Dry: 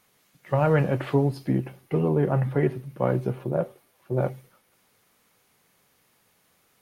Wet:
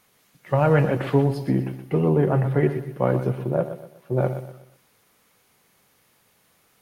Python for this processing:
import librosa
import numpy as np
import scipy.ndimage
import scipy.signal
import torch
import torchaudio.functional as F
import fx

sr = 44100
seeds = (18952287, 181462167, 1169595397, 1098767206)

y = fx.echo_feedback(x, sr, ms=123, feedback_pct=37, wet_db=-11.0)
y = y * 10.0 ** (2.5 / 20.0)